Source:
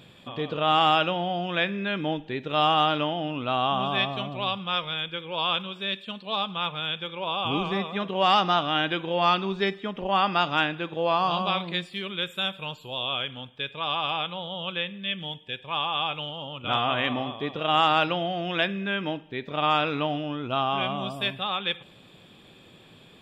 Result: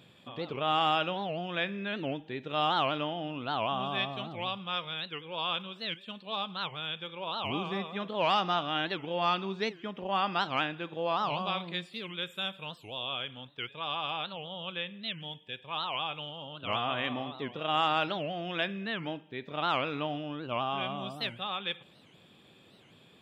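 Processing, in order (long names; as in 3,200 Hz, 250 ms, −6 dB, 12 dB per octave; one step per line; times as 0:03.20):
high-pass filter 77 Hz
wow of a warped record 78 rpm, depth 250 cents
level −6.5 dB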